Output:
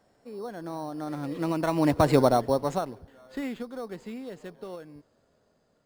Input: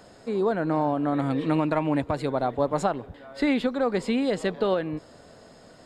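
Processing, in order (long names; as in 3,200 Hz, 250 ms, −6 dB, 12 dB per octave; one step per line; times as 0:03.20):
source passing by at 0:02.13, 17 m/s, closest 2.6 metres
in parallel at −5 dB: decimation without filtering 9×
on the sum: level +4.5 dB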